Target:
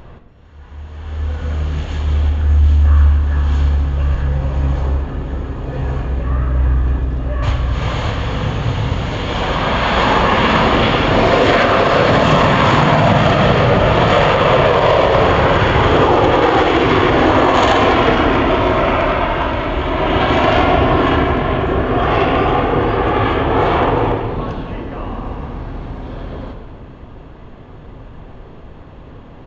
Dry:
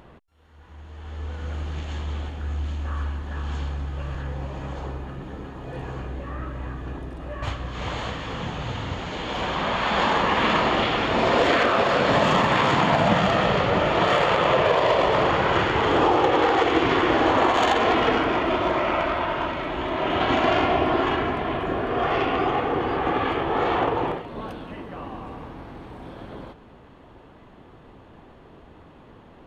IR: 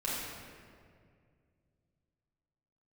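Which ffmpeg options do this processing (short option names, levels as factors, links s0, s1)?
-filter_complex "[0:a]lowshelf=f=120:g=10.5,asplit=2[s0][s1];[1:a]atrim=start_sample=2205[s2];[s1][s2]afir=irnorm=-1:irlink=0,volume=0.398[s3];[s0][s3]amix=inputs=2:normalize=0,aresample=16000,aresample=44100,alimiter=level_in=1.88:limit=0.891:release=50:level=0:latency=1,volume=0.891"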